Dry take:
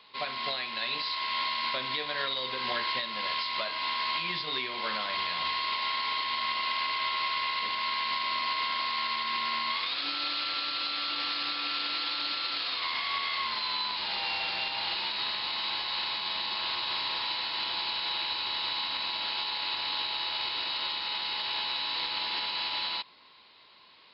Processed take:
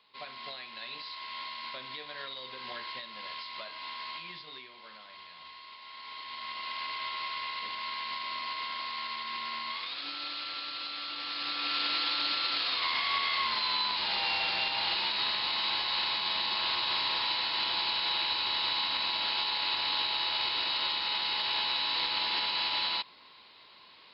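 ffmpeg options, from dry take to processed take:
ffmpeg -i in.wav -af "volume=10dB,afade=type=out:start_time=4.06:duration=0.76:silence=0.375837,afade=type=in:start_time=5.85:duration=1.04:silence=0.251189,afade=type=in:start_time=11.24:duration=0.6:silence=0.421697" out.wav

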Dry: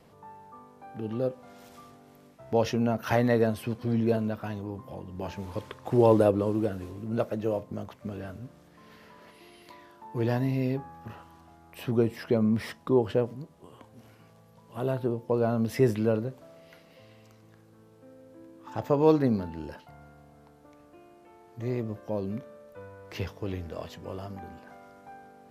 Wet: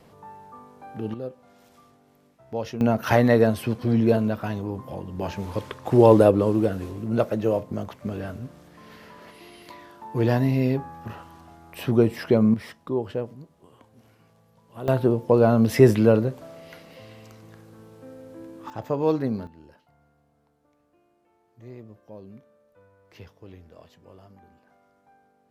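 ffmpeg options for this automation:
ffmpeg -i in.wav -af "asetnsamples=nb_out_samples=441:pad=0,asendcmd='1.14 volume volume -5dB;2.81 volume volume 6dB;12.54 volume volume -3dB;14.88 volume volume 8.5dB;18.7 volume volume -1.5dB;19.47 volume volume -11.5dB',volume=4dB" out.wav

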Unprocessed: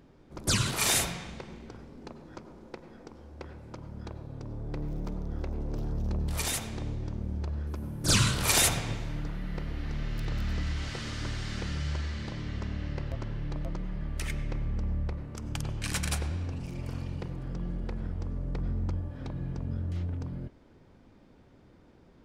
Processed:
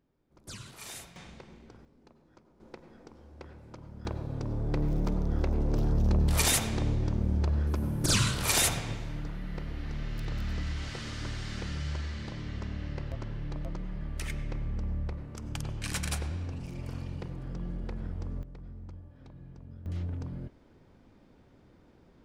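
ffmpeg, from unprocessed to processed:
ffmpeg -i in.wav -af "asetnsamples=nb_out_samples=441:pad=0,asendcmd='1.16 volume volume -7dB;1.85 volume volume -14.5dB;2.6 volume volume -4dB;4.05 volume volume 6dB;8.06 volume volume -2dB;18.43 volume volume -13.5dB;19.86 volume volume -1.5dB',volume=-18dB" out.wav

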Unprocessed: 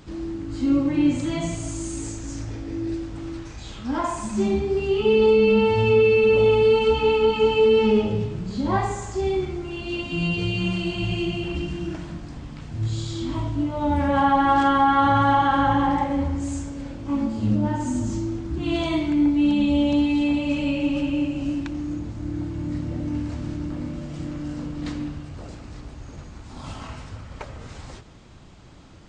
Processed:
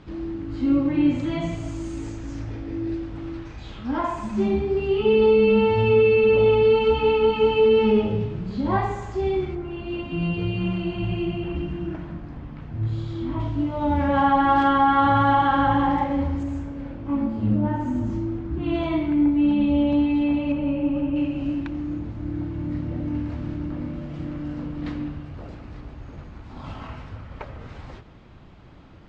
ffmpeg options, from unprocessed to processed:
ffmpeg -i in.wav -af "asetnsamples=nb_out_samples=441:pad=0,asendcmd='9.55 lowpass f 2000;13.4 lowpass f 3900;16.43 lowpass f 2200;20.52 lowpass f 1400;21.16 lowpass f 2900',lowpass=3300" out.wav

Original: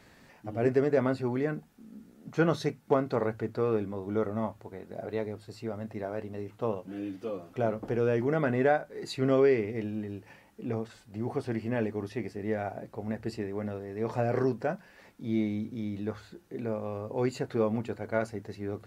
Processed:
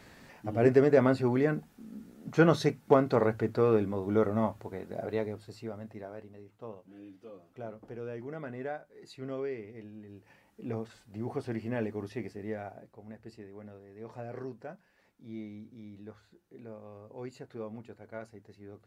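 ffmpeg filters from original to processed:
ffmpeg -i in.wav -af "volume=13dB,afade=type=out:start_time=4.79:duration=0.98:silence=0.398107,afade=type=out:start_time=5.77:duration=0.63:silence=0.398107,afade=type=in:start_time=10.02:duration=0.7:silence=0.316228,afade=type=out:start_time=12.21:duration=0.74:silence=0.316228" out.wav

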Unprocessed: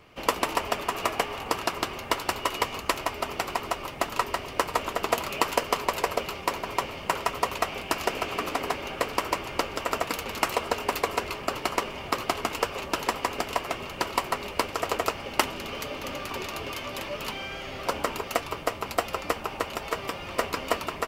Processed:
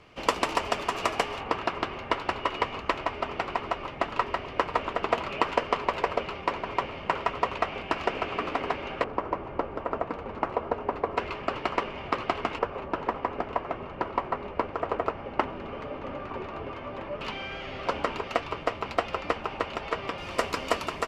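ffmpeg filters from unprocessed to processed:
ffmpeg -i in.wav -af "asetnsamples=nb_out_samples=441:pad=0,asendcmd='1.4 lowpass f 2800;9.04 lowpass f 1100;11.17 lowpass f 2700;12.59 lowpass f 1400;17.21 lowpass f 3500;20.18 lowpass f 8700',lowpass=7200" out.wav

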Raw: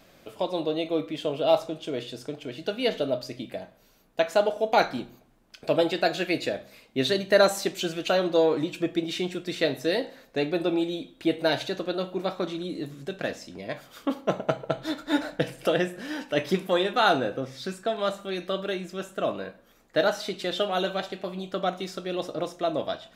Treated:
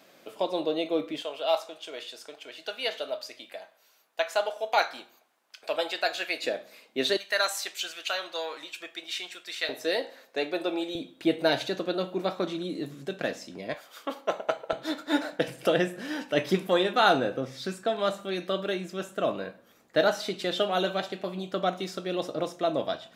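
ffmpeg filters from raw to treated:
ffmpeg -i in.wav -af "asetnsamples=nb_out_samples=441:pad=0,asendcmd='1.22 highpass f 780;6.44 highpass f 330;7.17 highpass f 1200;9.69 highpass f 440;10.95 highpass f 140;13.74 highpass f 520;14.73 highpass f 240;15.48 highpass f 100',highpass=250" out.wav

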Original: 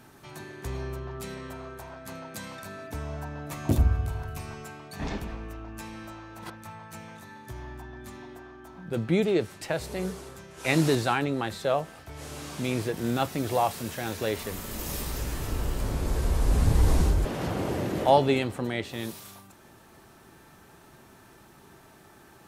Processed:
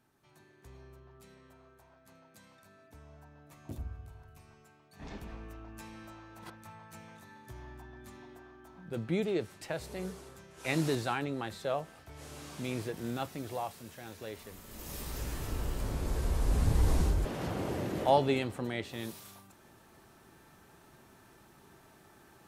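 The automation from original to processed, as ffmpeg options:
ffmpeg -i in.wav -af "volume=1dB,afade=type=in:start_time=4.9:duration=0.46:silence=0.266073,afade=type=out:start_time=12.83:duration=0.97:silence=0.473151,afade=type=in:start_time=14.65:duration=0.6:silence=0.375837" out.wav

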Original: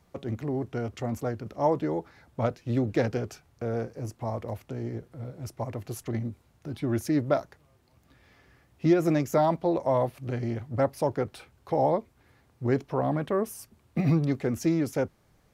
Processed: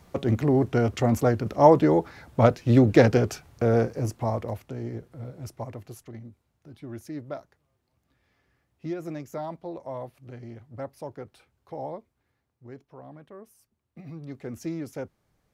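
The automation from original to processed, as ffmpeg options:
ffmpeg -i in.wav -af "volume=20dB,afade=type=out:start_time=3.78:duration=0.89:silence=0.354813,afade=type=out:start_time=5.39:duration=0.73:silence=0.281838,afade=type=out:start_time=11.85:duration=0.79:silence=0.421697,afade=type=in:start_time=14.12:duration=0.42:silence=0.281838" out.wav

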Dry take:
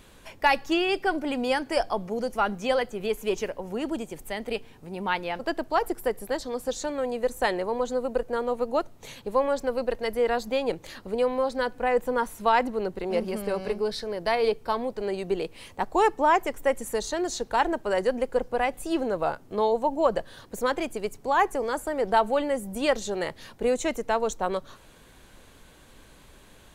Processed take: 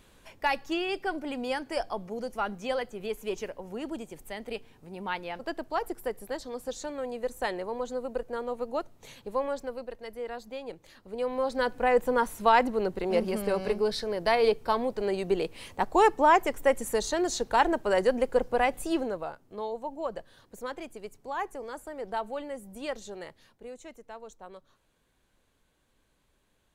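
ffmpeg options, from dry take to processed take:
ffmpeg -i in.wav -af "volume=7dB,afade=type=out:start_time=9.48:duration=0.41:silence=0.473151,afade=type=in:start_time=11.04:duration=0.67:silence=0.223872,afade=type=out:start_time=18.81:duration=0.47:silence=0.266073,afade=type=out:start_time=23.1:duration=0.53:silence=0.398107" out.wav

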